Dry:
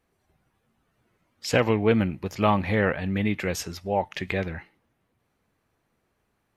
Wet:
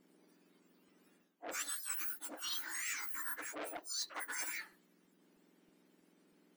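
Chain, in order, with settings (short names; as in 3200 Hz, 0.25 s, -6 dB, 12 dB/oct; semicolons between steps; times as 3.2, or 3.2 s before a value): spectrum mirrored in octaves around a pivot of 1900 Hz; low shelf 370 Hz +9.5 dB; reverse; compressor 12:1, threshold -40 dBFS, peak gain reduction 19.5 dB; reverse; crackling interface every 0.32 s, samples 256, repeat, from 0.88; core saturation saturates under 2600 Hz; gain +2.5 dB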